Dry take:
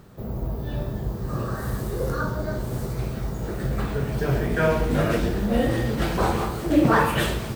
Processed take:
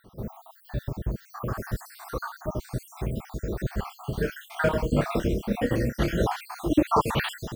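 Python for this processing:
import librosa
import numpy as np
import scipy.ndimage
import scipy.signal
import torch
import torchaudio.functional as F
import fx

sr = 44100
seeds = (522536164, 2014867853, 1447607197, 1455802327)

y = fx.spec_dropout(x, sr, seeds[0], share_pct=61)
y = fx.doubler(y, sr, ms=29.0, db=-10.5, at=(3.82, 6.24), fade=0.02)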